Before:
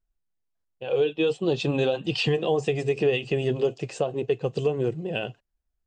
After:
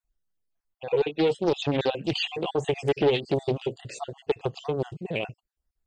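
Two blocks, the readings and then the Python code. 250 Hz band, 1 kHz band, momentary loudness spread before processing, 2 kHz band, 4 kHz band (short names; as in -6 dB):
-1.0 dB, +2.5 dB, 6 LU, -2.5 dB, 0.0 dB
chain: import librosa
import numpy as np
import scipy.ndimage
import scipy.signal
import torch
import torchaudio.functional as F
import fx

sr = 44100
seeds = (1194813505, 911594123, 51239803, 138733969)

y = fx.spec_dropout(x, sr, seeds[0], share_pct=44)
y = fx.doppler_dist(y, sr, depth_ms=0.47)
y = F.gain(torch.from_numpy(y), 1.0).numpy()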